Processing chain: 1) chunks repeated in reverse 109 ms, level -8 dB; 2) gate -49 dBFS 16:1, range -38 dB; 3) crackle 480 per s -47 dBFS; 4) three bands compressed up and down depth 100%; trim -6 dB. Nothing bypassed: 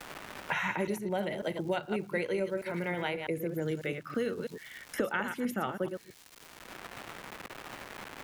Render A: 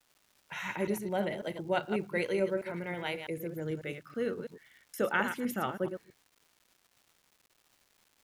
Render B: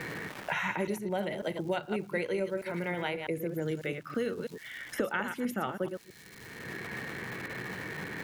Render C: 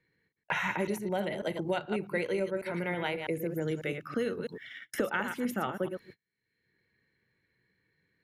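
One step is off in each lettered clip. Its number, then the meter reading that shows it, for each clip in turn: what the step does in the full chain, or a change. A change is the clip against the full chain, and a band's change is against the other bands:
4, crest factor change +2.5 dB; 2, momentary loudness spread change -4 LU; 3, momentary loudness spread change -7 LU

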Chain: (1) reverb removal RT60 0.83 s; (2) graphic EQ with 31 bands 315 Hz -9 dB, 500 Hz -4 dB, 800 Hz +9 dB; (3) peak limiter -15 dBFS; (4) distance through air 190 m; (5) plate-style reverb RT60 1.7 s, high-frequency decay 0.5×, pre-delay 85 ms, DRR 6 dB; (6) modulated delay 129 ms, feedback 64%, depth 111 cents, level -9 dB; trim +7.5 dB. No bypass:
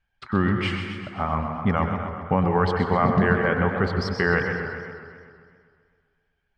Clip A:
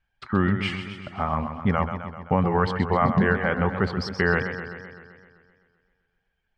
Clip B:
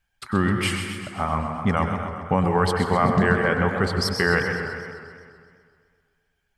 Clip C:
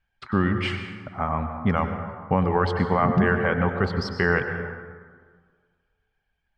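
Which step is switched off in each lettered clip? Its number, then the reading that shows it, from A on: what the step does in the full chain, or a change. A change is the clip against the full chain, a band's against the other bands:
5, momentary loudness spread change +3 LU; 4, 4 kHz band +5.5 dB; 6, momentary loudness spread change +2 LU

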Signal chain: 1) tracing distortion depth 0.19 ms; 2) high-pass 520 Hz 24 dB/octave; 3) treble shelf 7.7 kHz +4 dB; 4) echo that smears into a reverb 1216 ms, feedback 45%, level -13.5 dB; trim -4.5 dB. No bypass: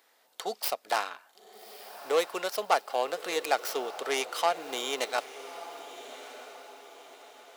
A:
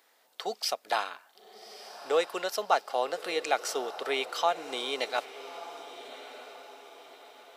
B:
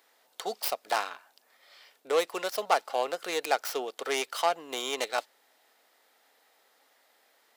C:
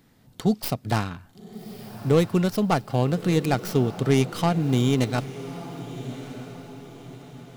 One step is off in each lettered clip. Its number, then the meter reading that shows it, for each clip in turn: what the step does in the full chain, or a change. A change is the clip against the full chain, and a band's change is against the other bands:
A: 1, 8 kHz band -2.0 dB; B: 4, echo-to-direct -12.5 dB to none; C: 2, 250 Hz band +21.5 dB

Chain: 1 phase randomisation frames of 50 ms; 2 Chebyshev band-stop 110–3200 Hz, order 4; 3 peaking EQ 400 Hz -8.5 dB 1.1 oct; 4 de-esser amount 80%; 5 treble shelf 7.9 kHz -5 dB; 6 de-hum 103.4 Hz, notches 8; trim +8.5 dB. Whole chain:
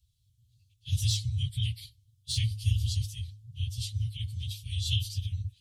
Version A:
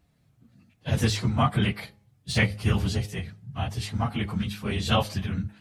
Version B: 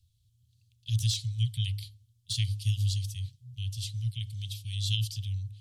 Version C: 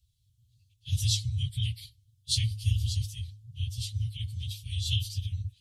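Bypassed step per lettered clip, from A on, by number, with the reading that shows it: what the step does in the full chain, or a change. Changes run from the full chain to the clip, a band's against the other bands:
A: 2, 2 kHz band +16.5 dB; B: 1, crest factor change +1.5 dB; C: 4, 8 kHz band +2.0 dB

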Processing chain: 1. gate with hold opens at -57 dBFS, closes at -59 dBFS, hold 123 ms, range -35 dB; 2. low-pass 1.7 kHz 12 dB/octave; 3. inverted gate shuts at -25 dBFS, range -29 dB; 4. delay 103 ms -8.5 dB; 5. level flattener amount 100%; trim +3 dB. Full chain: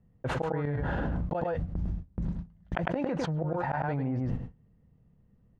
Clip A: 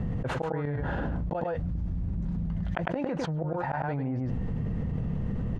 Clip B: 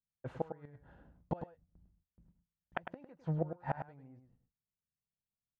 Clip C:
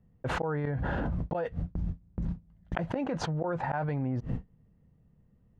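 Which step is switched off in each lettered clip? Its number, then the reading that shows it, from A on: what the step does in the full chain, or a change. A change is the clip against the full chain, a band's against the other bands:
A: 1, momentary loudness spread change -4 LU; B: 5, crest factor change +7.0 dB; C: 4, 4 kHz band +3.0 dB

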